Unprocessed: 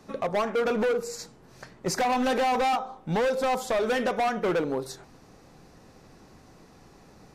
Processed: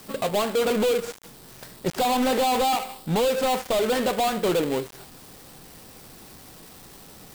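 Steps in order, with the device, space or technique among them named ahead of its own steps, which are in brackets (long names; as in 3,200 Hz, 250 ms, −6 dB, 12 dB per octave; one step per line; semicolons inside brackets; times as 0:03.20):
budget class-D amplifier (gap after every zero crossing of 0.22 ms; spike at every zero crossing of −33.5 dBFS)
level +3.5 dB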